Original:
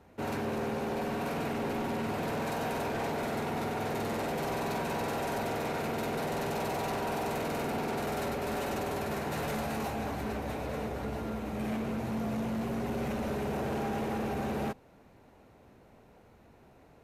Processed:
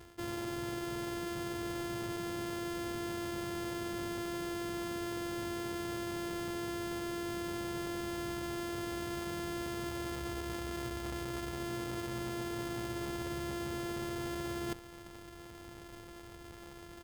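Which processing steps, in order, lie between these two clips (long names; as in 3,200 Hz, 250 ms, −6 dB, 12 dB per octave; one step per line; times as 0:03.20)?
samples sorted by size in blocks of 128 samples
comb filter 2.3 ms, depth 32%
reversed playback
downward compressor 10 to 1, threshold −44 dBFS, peak gain reduction 14 dB
reversed playback
level +7.5 dB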